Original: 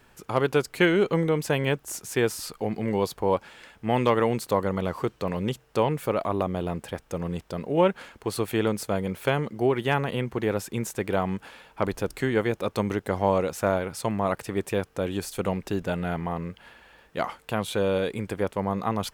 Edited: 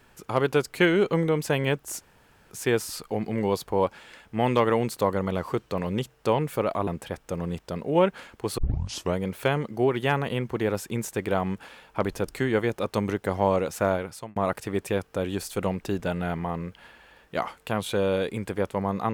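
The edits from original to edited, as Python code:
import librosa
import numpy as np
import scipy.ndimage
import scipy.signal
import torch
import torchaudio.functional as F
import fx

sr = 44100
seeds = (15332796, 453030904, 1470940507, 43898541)

y = fx.edit(x, sr, fx.insert_room_tone(at_s=2.01, length_s=0.5),
    fx.cut(start_s=6.37, length_s=0.32),
    fx.tape_start(start_s=8.4, length_s=0.59),
    fx.fade_out_span(start_s=13.77, length_s=0.41), tone=tone)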